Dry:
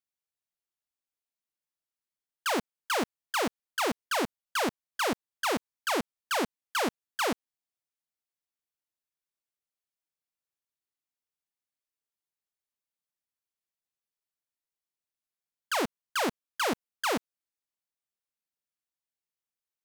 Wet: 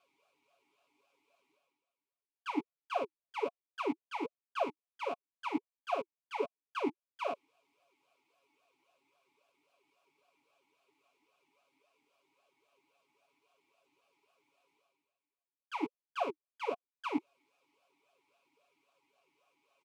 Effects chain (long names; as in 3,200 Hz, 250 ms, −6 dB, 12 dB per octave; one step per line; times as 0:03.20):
comb filter 7.2 ms, depth 88%
reversed playback
upward compression, threshold −30 dBFS
reversed playback
formant filter swept between two vowels a-u 3.7 Hz
level +1 dB